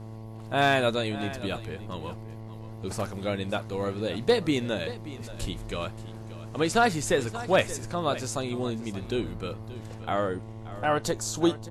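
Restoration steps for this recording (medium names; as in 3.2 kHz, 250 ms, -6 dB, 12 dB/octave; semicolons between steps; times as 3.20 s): clip repair -12.5 dBFS; de-hum 110.4 Hz, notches 10; inverse comb 579 ms -15.5 dB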